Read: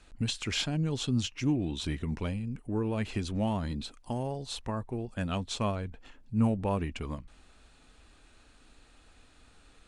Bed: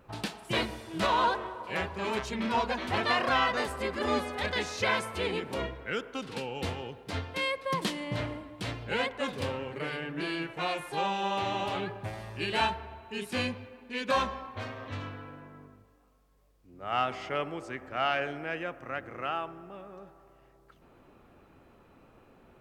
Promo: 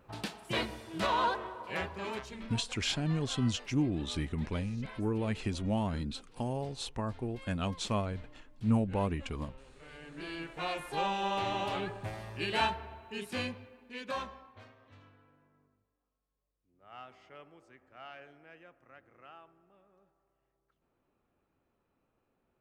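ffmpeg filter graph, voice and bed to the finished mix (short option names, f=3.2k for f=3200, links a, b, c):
-filter_complex "[0:a]adelay=2300,volume=-1.5dB[a];[1:a]volume=16dB,afade=t=out:st=1.85:d=0.75:silence=0.125893,afade=t=in:st=9.8:d=1.14:silence=0.105925,afade=t=out:st=12.81:d=1.97:silence=0.125893[b];[a][b]amix=inputs=2:normalize=0"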